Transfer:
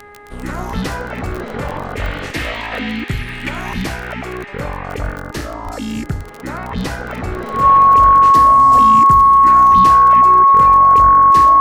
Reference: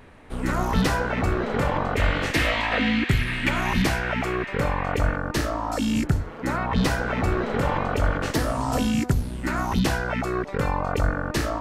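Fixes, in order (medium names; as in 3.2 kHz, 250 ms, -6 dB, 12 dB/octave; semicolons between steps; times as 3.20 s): de-click; de-hum 412.2 Hz, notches 5; band-stop 1.1 kHz, Q 30; 5.64–5.76 s: high-pass 140 Hz 24 dB/octave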